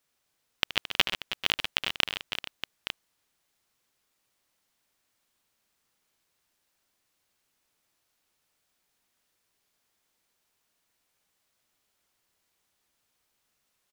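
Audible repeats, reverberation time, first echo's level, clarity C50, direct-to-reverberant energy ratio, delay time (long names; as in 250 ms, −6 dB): 5, no reverb audible, −13.5 dB, no reverb audible, no reverb audible, 75 ms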